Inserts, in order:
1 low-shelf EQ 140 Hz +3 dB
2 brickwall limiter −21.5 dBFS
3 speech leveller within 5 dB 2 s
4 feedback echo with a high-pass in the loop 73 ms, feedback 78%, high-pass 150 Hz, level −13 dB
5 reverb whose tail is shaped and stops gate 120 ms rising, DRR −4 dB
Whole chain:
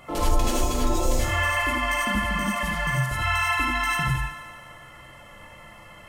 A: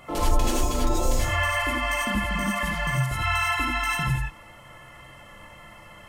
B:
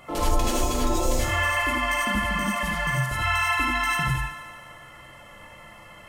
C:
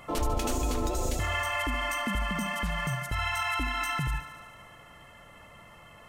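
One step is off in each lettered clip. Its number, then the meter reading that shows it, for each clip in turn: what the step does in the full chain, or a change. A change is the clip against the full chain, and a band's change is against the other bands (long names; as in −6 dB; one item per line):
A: 4, change in momentary loudness spread −6 LU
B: 1, 125 Hz band −1.5 dB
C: 5, echo-to-direct ratio 5.0 dB to −9.0 dB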